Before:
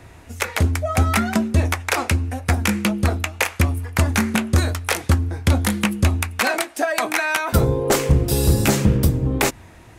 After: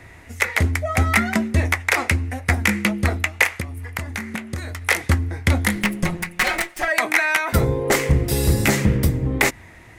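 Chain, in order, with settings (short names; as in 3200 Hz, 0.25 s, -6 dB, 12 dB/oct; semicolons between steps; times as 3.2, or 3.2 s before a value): 5.75–6.88 minimum comb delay 5.5 ms; bell 2000 Hz +11.5 dB 0.38 oct; 3.48–4.82 compressor 12:1, threshold -23 dBFS, peak gain reduction 13 dB; gain -1.5 dB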